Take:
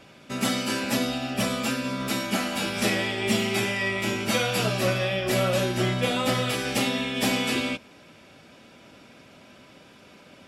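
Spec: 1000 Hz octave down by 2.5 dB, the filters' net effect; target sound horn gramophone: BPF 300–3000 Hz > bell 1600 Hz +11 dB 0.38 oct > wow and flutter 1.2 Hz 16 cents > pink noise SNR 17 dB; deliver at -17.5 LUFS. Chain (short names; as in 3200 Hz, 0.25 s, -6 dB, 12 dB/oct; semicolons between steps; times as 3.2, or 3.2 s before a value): BPF 300–3000 Hz; bell 1000 Hz -6 dB; bell 1600 Hz +11 dB 0.38 oct; wow and flutter 1.2 Hz 16 cents; pink noise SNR 17 dB; gain +10 dB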